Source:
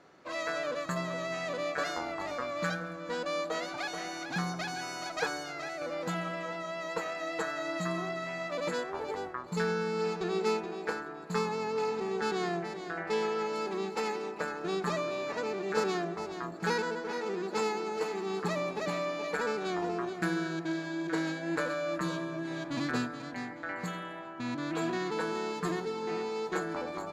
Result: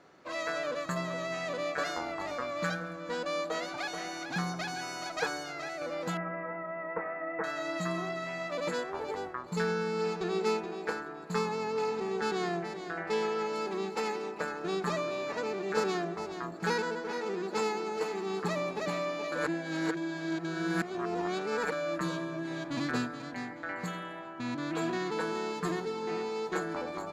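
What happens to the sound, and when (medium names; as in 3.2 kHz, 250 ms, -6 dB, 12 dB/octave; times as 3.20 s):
6.17–7.44 s: elliptic low-pass 2.1 kHz, stop band 50 dB
19.32–21.72 s: reverse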